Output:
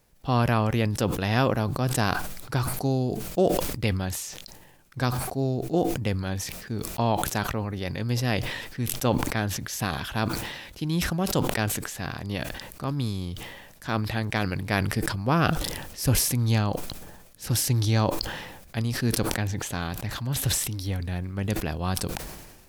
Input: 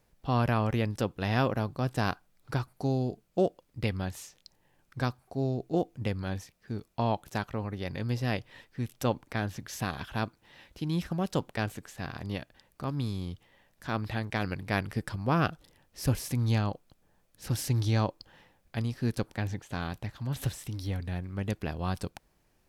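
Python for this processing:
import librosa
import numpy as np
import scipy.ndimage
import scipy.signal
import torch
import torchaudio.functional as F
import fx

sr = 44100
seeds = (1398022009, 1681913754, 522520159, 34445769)

y = fx.high_shelf(x, sr, hz=4600.0, db=6.0)
y = fx.sustainer(y, sr, db_per_s=44.0)
y = y * 10.0 ** (3.5 / 20.0)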